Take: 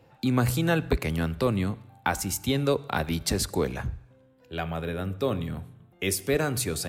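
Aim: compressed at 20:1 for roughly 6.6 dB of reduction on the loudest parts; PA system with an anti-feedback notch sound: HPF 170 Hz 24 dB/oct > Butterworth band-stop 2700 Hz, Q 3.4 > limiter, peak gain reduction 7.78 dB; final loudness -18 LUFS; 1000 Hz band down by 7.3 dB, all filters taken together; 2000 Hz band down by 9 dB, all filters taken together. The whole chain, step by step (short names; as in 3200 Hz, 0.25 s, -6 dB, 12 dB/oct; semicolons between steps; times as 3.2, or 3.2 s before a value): bell 1000 Hz -8.5 dB; bell 2000 Hz -7.5 dB; compressor 20:1, threshold -26 dBFS; HPF 170 Hz 24 dB/oct; Butterworth band-stop 2700 Hz, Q 3.4; gain +18.5 dB; limiter -7 dBFS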